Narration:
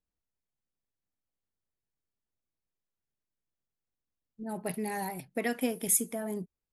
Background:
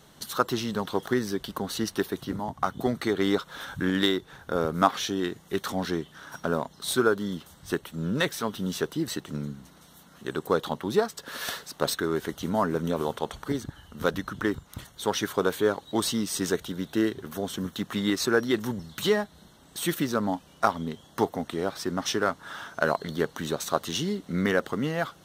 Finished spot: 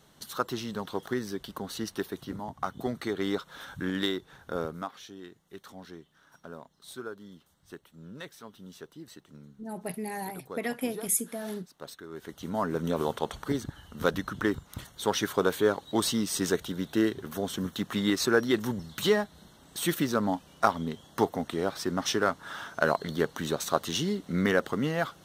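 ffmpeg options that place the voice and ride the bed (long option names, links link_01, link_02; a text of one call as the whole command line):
ffmpeg -i stem1.wav -i stem2.wav -filter_complex "[0:a]adelay=5200,volume=-1dB[link_01];[1:a]volume=11dB,afade=type=out:start_time=4.6:duration=0.26:silence=0.266073,afade=type=in:start_time=12.08:duration=0.93:silence=0.149624[link_02];[link_01][link_02]amix=inputs=2:normalize=0" out.wav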